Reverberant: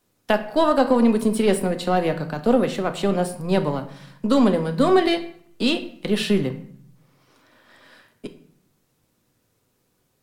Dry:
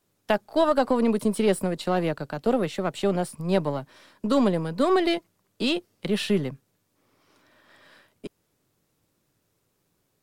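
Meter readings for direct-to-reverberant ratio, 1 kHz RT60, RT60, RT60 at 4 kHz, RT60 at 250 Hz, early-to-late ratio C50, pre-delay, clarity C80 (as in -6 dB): 6.5 dB, 0.65 s, 0.60 s, 0.45 s, 0.90 s, 12.5 dB, 4 ms, 15.5 dB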